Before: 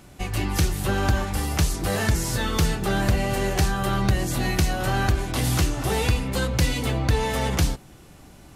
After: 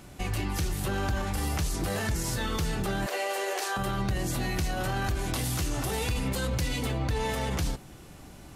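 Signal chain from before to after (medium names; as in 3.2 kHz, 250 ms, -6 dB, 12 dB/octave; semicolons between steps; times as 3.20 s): 3.06–3.77 s: steep high-pass 400 Hz 36 dB/octave; 5.04–6.61 s: treble shelf 5.3 kHz +5 dB; peak limiter -21.5 dBFS, peak gain reduction 10.5 dB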